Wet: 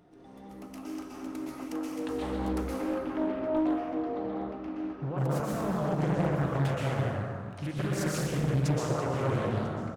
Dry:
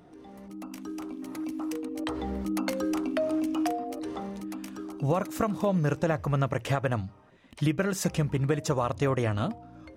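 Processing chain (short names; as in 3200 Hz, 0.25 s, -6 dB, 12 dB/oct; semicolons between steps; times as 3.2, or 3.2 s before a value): limiter -21.5 dBFS, peak gain reduction 7.5 dB; 2.62–5.18 air absorption 350 m; echo 0.995 s -22 dB; plate-style reverb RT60 2.2 s, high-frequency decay 0.5×, pre-delay 0.11 s, DRR -6 dB; Doppler distortion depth 0.72 ms; gain -6 dB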